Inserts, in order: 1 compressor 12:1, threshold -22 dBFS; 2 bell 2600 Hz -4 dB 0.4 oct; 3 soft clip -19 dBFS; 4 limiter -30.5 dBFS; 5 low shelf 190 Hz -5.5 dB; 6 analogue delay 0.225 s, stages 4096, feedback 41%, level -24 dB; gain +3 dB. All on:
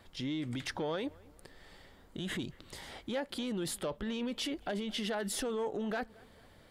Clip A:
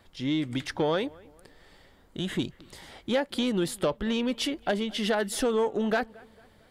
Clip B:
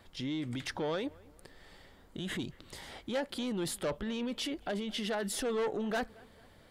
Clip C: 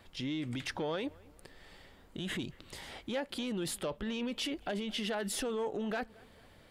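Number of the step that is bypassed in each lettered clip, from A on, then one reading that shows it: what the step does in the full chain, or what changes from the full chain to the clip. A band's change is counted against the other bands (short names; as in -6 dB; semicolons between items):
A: 4, mean gain reduction 4.0 dB; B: 1, mean gain reduction 2.5 dB; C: 2, momentary loudness spread change +5 LU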